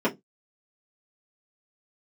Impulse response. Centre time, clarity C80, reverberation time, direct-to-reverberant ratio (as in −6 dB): 12 ms, 27.5 dB, 0.15 s, −7.0 dB